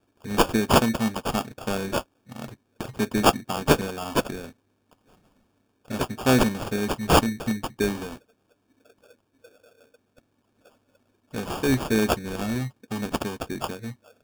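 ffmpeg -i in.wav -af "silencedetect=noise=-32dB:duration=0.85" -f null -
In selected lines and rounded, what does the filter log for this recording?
silence_start: 4.46
silence_end: 5.90 | silence_duration: 1.45
silence_start: 8.14
silence_end: 11.34 | silence_duration: 3.21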